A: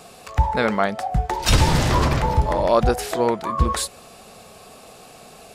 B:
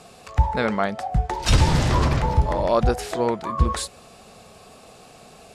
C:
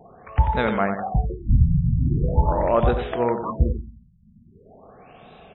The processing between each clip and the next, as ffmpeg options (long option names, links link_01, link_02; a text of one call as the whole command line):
ffmpeg -i in.wav -af "lowpass=10000,equalizer=frequency=73:width=0.38:gain=3.5,volume=-3dB" out.wav
ffmpeg -i in.wav -af "aecho=1:1:91|182|273|364:0.398|0.147|0.0545|0.0202,afftfilt=real='re*lt(b*sr/1024,210*pow(4000/210,0.5+0.5*sin(2*PI*0.42*pts/sr)))':imag='im*lt(b*sr/1024,210*pow(4000/210,0.5+0.5*sin(2*PI*0.42*pts/sr)))':win_size=1024:overlap=0.75" out.wav